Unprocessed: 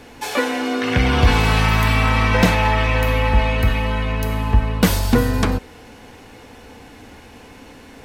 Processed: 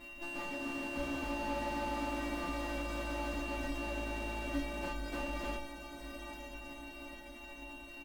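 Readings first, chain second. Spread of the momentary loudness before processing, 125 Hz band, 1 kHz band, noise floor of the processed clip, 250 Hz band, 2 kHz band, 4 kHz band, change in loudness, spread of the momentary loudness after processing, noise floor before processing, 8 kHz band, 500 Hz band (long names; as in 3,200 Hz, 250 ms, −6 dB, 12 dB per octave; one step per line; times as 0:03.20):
7 LU, −29.0 dB, −18.5 dB, −50 dBFS, −18.0 dB, −19.5 dB, −20.0 dB, −21.5 dB, 11 LU, −43 dBFS, −20.0 dB, −18.0 dB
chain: samples sorted by size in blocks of 128 samples
hum removal 101.9 Hz, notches 2
reverb reduction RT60 0.93 s
low-pass filter 3,200 Hz 12 dB per octave
comb filter 4.8 ms, depth 66%
tube saturation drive 30 dB, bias 0.45
log-companded quantiser 6 bits
stiff-string resonator 280 Hz, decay 0.38 s, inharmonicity 0.008
on a send: feedback delay with all-pass diffusion 905 ms, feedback 59%, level −10 dB
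on the sum: slew-rate limiting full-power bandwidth 4 Hz
level +13.5 dB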